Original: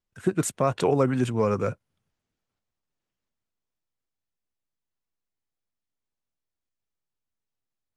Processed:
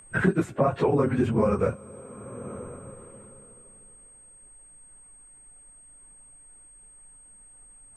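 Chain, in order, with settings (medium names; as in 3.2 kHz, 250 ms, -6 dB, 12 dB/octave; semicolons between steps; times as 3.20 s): phase randomisation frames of 50 ms; treble shelf 5.6 kHz -7 dB; two-slope reverb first 0.26 s, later 3 s, from -18 dB, DRR 18 dB; whistle 8.4 kHz -53 dBFS; three bands compressed up and down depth 100%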